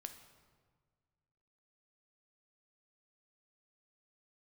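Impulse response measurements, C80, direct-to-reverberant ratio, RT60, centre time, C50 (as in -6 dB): 11.0 dB, 7.0 dB, 1.6 s, 18 ms, 9.5 dB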